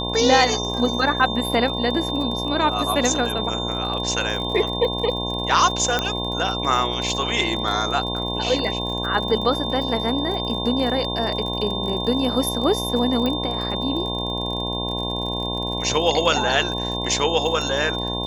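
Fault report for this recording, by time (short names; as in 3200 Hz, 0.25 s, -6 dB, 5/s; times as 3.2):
buzz 60 Hz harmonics 18 -28 dBFS
crackle 44/s -29 dBFS
tone 3600 Hz -27 dBFS
5.99 pop -6 dBFS
13.26 pop -12 dBFS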